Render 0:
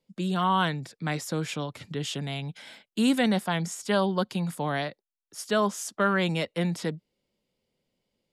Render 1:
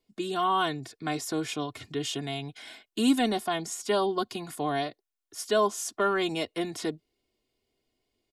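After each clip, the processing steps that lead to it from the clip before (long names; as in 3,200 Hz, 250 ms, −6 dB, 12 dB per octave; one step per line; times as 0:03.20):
dynamic equaliser 1,800 Hz, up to −6 dB, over −41 dBFS, Q 1.2
comb filter 2.8 ms, depth 82%
level −1 dB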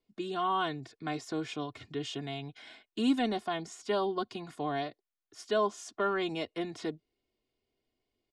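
high-frequency loss of the air 95 metres
level −4 dB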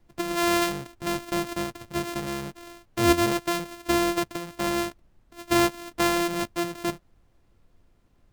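samples sorted by size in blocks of 128 samples
background noise brown −66 dBFS
level +7 dB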